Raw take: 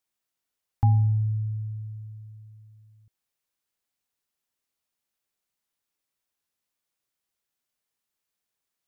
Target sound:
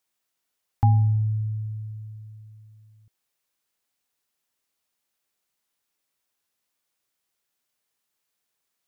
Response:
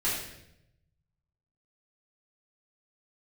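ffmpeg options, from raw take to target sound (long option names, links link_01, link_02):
-af "lowshelf=frequency=170:gain=-5,volume=5dB"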